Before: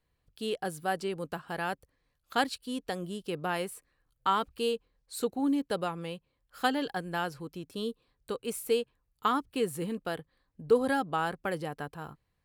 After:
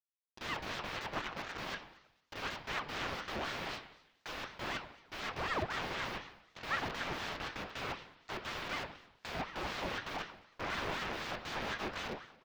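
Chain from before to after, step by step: bit-reversed sample order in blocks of 32 samples; comb 6.9 ms, depth 98%; 1.06–1.58 s: compressor with a negative ratio -39 dBFS, ratio -0.5; fuzz box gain 39 dB, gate -42 dBFS; resampled via 16 kHz; integer overflow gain 27 dB; distance through air 290 m; feedback echo behind a high-pass 229 ms, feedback 54%, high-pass 4.2 kHz, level -23 dB; on a send at -1.5 dB: reverberation RT60 0.85 s, pre-delay 3 ms; on the sum: ring modulator with a swept carrier 1 kHz, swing 65%, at 4 Hz

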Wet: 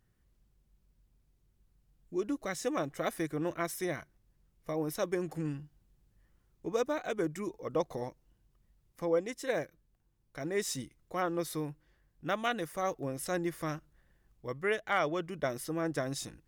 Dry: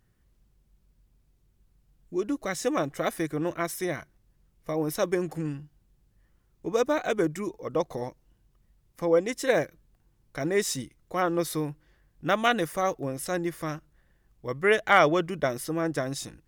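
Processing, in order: gain riding within 4 dB 0.5 s; trim -7 dB

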